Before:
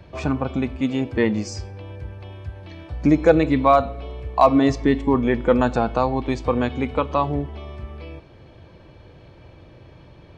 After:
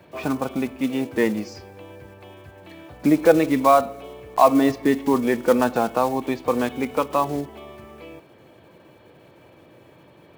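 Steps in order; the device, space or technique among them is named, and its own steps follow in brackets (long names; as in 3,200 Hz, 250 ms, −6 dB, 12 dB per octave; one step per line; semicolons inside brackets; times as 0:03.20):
early digital voice recorder (band-pass filter 200–3,800 Hz; one scale factor per block 5 bits)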